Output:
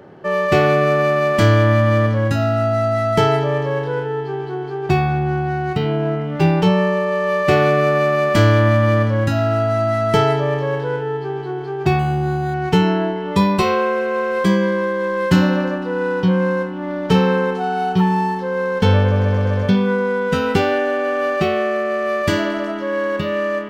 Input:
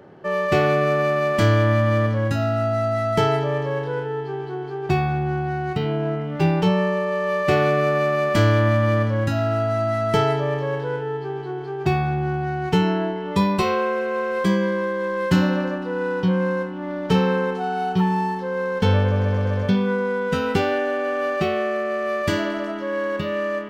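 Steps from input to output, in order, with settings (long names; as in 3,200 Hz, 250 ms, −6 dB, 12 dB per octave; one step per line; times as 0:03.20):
0:11.99–0:12.54: linearly interpolated sample-rate reduction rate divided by 8×
level +4 dB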